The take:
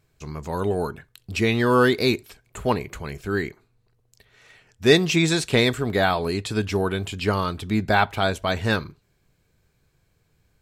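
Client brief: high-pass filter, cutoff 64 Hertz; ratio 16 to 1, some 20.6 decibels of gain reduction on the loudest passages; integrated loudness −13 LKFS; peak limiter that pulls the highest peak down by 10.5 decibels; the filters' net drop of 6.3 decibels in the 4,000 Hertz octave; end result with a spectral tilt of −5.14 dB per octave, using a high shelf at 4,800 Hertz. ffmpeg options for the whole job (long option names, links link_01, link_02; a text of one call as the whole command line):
ffmpeg -i in.wav -af "highpass=64,equalizer=frequency=4000:width_type=o:gain=-5,highshelf=frequency=4800:gain=-5.5,acompressor=threshold=-31dB:ratio=16,volume=28dB,alimiter=limit=-2.5dB:level=0:latency=1" out.wav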